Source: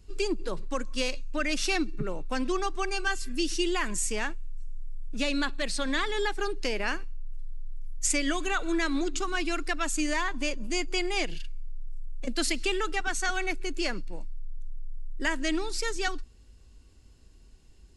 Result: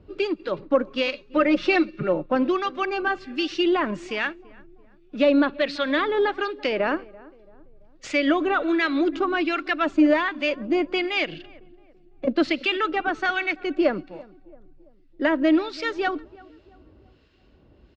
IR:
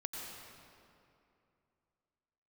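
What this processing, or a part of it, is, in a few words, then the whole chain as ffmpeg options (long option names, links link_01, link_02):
guitar amplifier with harmonic tremolo: -filter_complex "[0:a]acrossover=split=1300[link_01][link_02];[link_01]aeval=exprs='val(0)*(1-0.7/2+0.7/2*cos(2*PI*1.3*n/s))':channel_layout=same[link_03];[link_02]aeval=exprs='val(0)*(1-0.7/2-0.7/2*cos(2*PI*1.3*n/s))':channel_layout=same[link_04];[link_03][link_04]amix=inputs=2:normalize=0,asoftclip=type=tanh:threshold=-19dB,highpass=78,equalizer=frequency=310:width_type=q:width=4:gain=6,equalizer=frequency=580:width_type=q:width=4:gain=10,equalizer=frequency=1300:width_type=q:width=4:gain=4,lowpass=frequency=3700:width=0.5412,lowpass=frequency=3700:width=1.3066,asettb=1/sr,asplit=3[link_05][link_06][link_07];[link_05]atrim=end=1.274[link_08];[link_06]atrim=start=1.27:end=2.26,asetpts=PTS-STARTPTS,afade=type=in:duration=0.004:curve=qsin,afade=type=out:start_time=0.986:duration=0.004:curve=qsin,aecho=1:1:5.6:0.69,atrim=end_sample=43659[link_09];[link_07]atrim=start=2.256[link_10];[link_08][link_09]acrossfade=duration=0.004:curve1=hsin:curve2=qsin[link_11];[link_11][link_10]acrossfade=duration=0.004:curve1=qsin:curve2=hsin,asplit=2[link_12][link_13];[link_13]adelay=336,lowpass=frequency=1000:poles=1,volume=-20.5dB,asplit=2[link_14][link_15];[link_15]adelay=336,lowpass=frequency=1000:poles=1,volume=0.5,asplit=2[link_16][link_17];[link_17]adelay=336,lowpass=frequency=1000:poles=1,volume=0.5,asplit=2[link_18][link_19];[link_19]adelay=336,lowpass=frequency=1000:poles=1,volume=0.5[link_20];[link_12][link_14][link_16][link_18][link_20]amix=inputs=5:normalize=0,volume=8.5dB"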